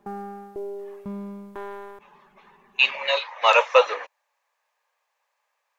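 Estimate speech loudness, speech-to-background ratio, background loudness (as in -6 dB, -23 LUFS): -20.0 LUFS, 17.0 dB, -37.0 LUFS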